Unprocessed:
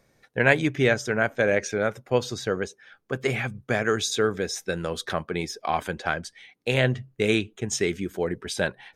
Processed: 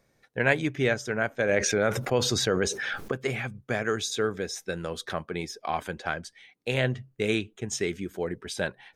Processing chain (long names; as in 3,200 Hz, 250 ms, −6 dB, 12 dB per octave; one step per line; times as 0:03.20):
0:01.49–0:03.12: envelope flattener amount 70%
level −4 dB